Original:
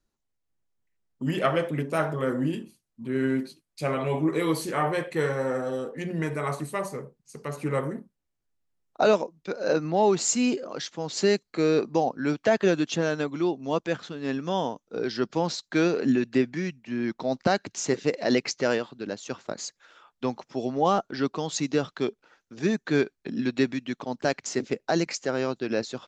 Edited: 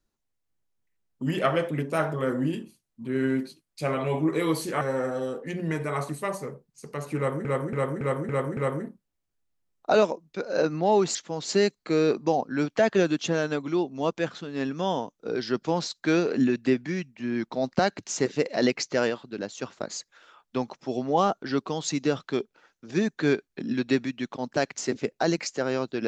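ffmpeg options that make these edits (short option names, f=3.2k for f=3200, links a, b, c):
-filter_complex "[0:a]asplit=8[a][b][c][d][e][f][g][h];[a]atrim=end=4.812[i];[b]atrim=start=5.318:end=7.962[j];[c]atrim=start=7.678:end=7.962[k];[d]atrim=start=7.678:end=7.962[l];[e]atrim=start=7.678:end=7.962[m];[f]atrim=start=7.678:end=7.962[n];[g]atrim=start=7.678:end=10.262[o];[h]atrim=start=10.828[p];[i][j]acrossfade=d=0.004:c1=hsin:c2=hsin[q];[q][k]acrossfade=d=0.004:c1=hsin:c2=hsin[r];[r][l]acrossfade=d=0.004:c1=hsin:c2=hsin[s];[s][m]acrossfade=d=0.004:c1=hsin:c2=hsin[t];[t][n]acrossfade=d=0.004:c1=hsin:c2=hsin[u];[u][o]acrossfade=d=0.004:c1=hsin:c2=hsin[v];[v][p]acrossfade=d=0.004:c1=hsin:c2=hsin"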